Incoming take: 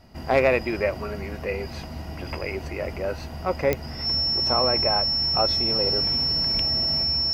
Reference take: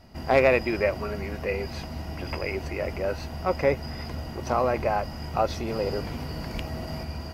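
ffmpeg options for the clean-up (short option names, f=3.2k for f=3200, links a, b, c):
-af "adeclick=t=4,bandreject=f=5.4k:w=30"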